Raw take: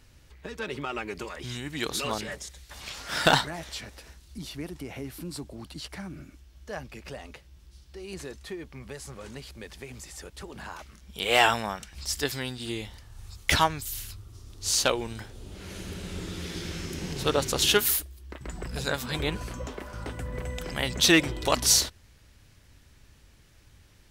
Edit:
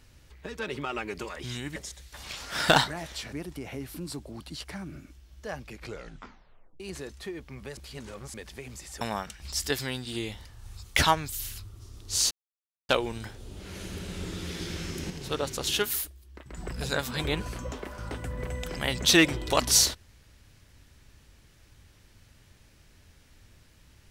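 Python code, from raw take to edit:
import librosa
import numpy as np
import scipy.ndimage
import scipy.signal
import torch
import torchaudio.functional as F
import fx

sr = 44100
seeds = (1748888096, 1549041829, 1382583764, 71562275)

y = fx.edit(x, sr, fx.cut(start_s=1.76, length_s=0.57),
    fx.cut(start_s=3.9, length_s=0.67),
    fx.tape_stop(start_s=6.95, length_s=1.09),
    fx.reverse_span(start_s=9.01, length_s=0.57),
    fx.cut(start_s=10.25, length_s=1.29),
    fx.insert_silence(at_s=14.84, length_s=0.58),
    fx.clip_gain(start_s=17.05, length_s=1.47, db=-5.5), tone=tone)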